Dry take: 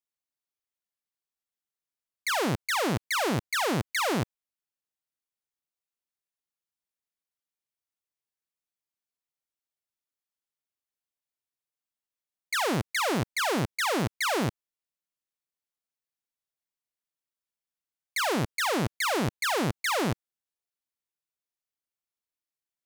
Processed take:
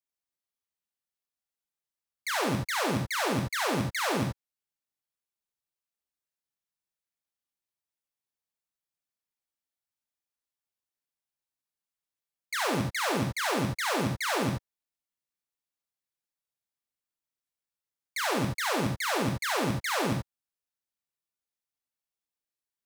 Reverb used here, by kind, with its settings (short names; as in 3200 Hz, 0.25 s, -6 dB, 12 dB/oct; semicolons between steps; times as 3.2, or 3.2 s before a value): non-linear reverb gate 0.1 s rising, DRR 1 dB; gain -4 dB